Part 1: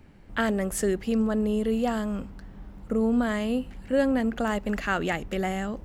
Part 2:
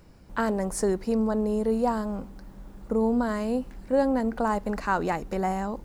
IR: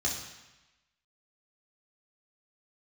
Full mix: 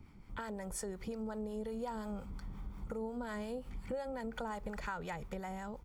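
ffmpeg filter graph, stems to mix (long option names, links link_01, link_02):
-filter_complex "[0:a]aecho=1:1:0.9:0.8,alimiter=limit=-21dB:level=0:latency=1,acompressor=threshold=-34dB:ratio=4,volume=-6dB[link_01];[1:a]agate=range=-7dB:threshold=-35dB:ratio=16:detection=peak,acompressor=threshold=-30dB:ratio=2,adelay=2.5,volume=-7dB[link_02];[link_01][link_02]amix=inputs=2:normalize=0,dynaudnorm=framelen=230:gausssize=9:maxgain=5dB,acrossover=split=750[link_03][link_04];[link_03]aeval=exprs='val(0)*(1-0.5/2+0.5/2*cos(2*PI*5.6*n/s))':channel_layout=same[link_05];[link_04]aeval=exprs='val(0)*(1-0.5/2-0.5/2*cos(2*PI*5.6*n/s))':channel_layout=same[link_06];[link_05][link_06]amix=inputs=2:normalize=0,acompressor=threshold=-39dB:ratio=2.5"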